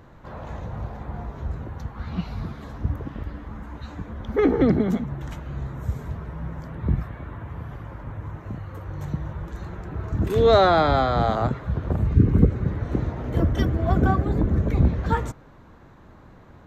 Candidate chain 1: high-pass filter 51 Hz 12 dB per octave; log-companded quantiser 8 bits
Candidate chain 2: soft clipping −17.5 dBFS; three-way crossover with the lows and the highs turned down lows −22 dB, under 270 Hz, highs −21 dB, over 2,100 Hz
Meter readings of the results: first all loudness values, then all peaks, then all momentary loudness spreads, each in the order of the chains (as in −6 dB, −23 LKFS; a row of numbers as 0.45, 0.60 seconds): −24.0, −31.0 LKFS; −3.5, −14.0 dBFS; 18, 19 LU